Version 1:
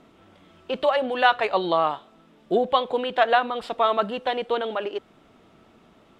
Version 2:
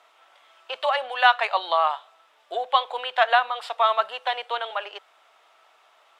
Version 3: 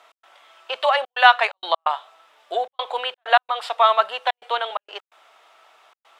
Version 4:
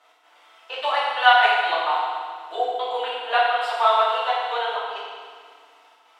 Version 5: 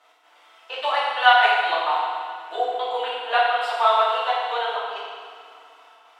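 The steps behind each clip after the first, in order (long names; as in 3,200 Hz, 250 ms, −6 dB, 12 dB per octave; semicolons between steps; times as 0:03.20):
high-pass filter 710 Hz 24 dB per octave; level +2.5 dB
gate pattern "x.xxxxxxx.xxx." 129 BPM −60 dB; level +4.5 dB
feedback delay network reverb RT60 1.8 s, low-frequency decay 1.55×, high-frequency decay 0.95×, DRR −9 dB; level −10 dB
delay with a band-pass on its return 257 ms, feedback 73%, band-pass 1,400 Hz, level −20.5 dB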